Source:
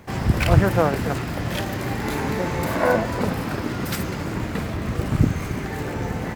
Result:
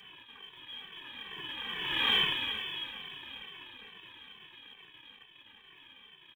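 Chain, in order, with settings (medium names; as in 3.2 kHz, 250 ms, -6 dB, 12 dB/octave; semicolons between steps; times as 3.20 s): one-bit comparator; Doppler pass-by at 2.12 s, 41 m/s, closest 4.5 m; brick-wall FIR high-pass 160 Hz; resonant low shelf 420 Hz -12.5 dB, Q 1.5; comb 1.4 ms, depth 76%; frequency inversion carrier 3.9 kHz; in parallel at -7 dB: short-mantissa float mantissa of 2-bit; on the sum: endless flanger 2.2 ms -2.3 Hz; trim -2.5 dB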